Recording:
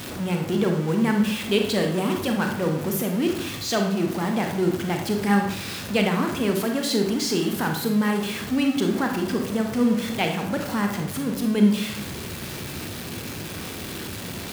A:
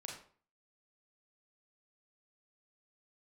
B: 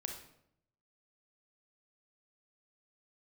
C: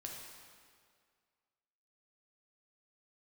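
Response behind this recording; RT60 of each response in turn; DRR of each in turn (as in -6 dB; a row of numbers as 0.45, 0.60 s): B; 0.45, 0.75, 2.0 s; -1.0, 3.0, -1.0 dB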